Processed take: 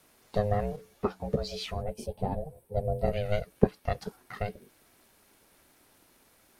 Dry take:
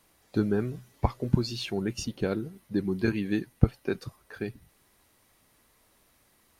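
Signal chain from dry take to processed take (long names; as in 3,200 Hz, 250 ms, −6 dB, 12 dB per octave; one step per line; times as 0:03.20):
0:01.82–0:03.13: gain on a spectral selection 750–7,800 Hz −12 dB
in parallel at −1.5 dB: downward compressor, threshold −33 dBFS, peak gain reduction 18.5 dB
on the sum: ring modulation 310 Hz
0:00.76–0:02.77: string-ensemble chorus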